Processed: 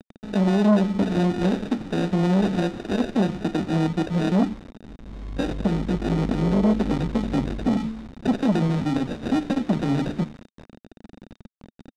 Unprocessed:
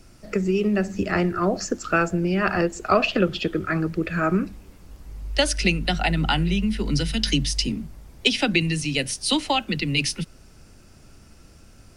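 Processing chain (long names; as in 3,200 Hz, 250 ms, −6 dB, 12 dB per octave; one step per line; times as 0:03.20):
graphic EQ with 10 bands 250 Hz +4 dB, 2,000 Hz −12 dB, 4,000 Hz −3 dB
brickwall limiter −15 dBFS, peak gain reduction 8.5 dB
notch filter 1,200 Hz, Q 8
decimation without filtering 41×
hum removal 73.77 Hz, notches 9
bit reduction 7 bits
high-frequency loss of the air 84 metres
hollow resonant body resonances 220/3,700 Hz, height 10 dB, ringing for 25 ms
saturating transformer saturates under 460 Hz
level −1 dB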